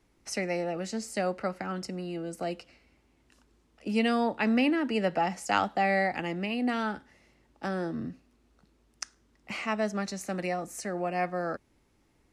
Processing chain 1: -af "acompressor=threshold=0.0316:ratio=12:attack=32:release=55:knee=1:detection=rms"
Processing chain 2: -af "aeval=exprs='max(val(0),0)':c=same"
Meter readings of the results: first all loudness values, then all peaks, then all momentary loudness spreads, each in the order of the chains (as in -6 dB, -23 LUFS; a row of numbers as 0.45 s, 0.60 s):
-34.0 LUFS, -34.5 LUFS; -14.0 dBFS, -12.5 dBFS; 9 LU, 13 LU